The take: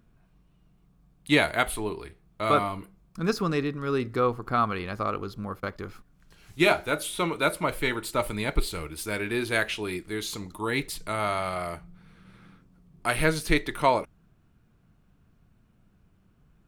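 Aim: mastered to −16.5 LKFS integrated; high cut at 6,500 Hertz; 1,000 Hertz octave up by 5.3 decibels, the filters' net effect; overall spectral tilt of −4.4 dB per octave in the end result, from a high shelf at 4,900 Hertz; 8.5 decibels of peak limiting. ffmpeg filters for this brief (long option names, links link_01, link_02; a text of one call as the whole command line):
ffmpeg -i in.wav -af "lowpass=6500,equalizer=frequency=1000:width_type=o:gain=6.5,highshelf=frequency=4900:gain=7.5,volume=10.5dB,alimiter=limit=-1dB:level=0:latency=1" out.wav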